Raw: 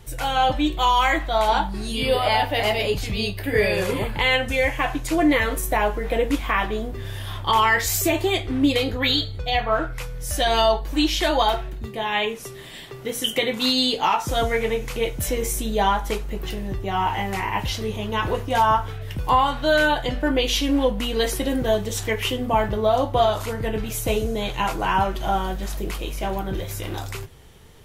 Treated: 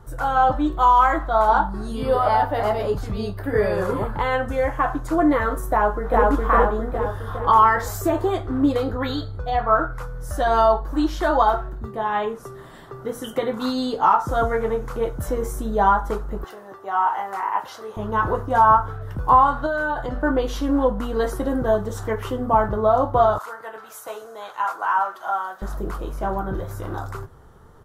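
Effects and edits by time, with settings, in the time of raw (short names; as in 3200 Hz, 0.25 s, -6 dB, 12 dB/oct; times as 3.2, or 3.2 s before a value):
5.72–6.26 echo throw 0.41 s, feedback 55%, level 0 dB
16.44–17.97 HPF 590 Hz
19.66–20.19 compressor, threshold -22 dBFS
23.38–25.62 HPF 930 Hz
whole clip: resonant high shelf 1800 Hz -10.5 dB, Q 3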